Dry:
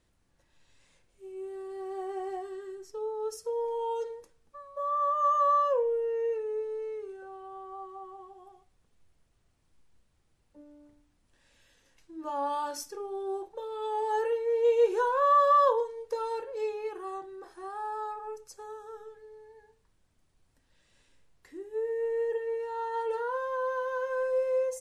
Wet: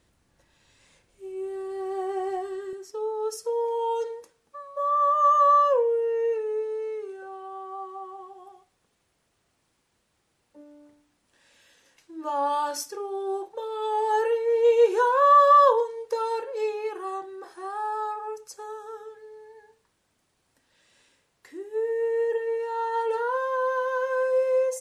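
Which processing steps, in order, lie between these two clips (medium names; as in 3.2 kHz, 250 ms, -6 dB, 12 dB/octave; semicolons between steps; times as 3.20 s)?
high-pass 48 Hz 6 dB/octave, from 2.73 s 320 Hz; trim +6.5 dB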